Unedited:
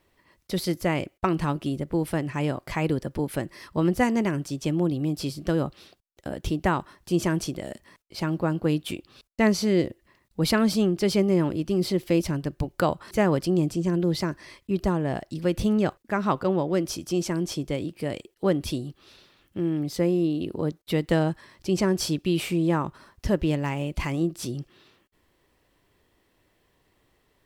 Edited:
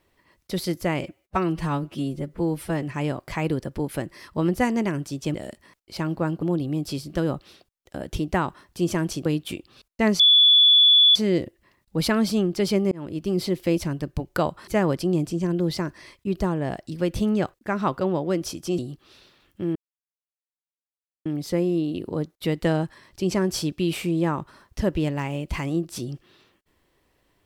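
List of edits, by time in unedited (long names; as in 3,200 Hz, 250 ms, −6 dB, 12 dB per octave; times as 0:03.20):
0:01.01–0:02.22: time-stretch 1.5×
0:07.57–0:08.65: move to 0:04.74
0:09.59: insert tone 3,440 Hz −11.5 dBFS 0.96 s
0:11.35–0:11.81: fade in equal-power
0:17.22–0:18.75: remove
0:19.72: splice in silence 1.50 s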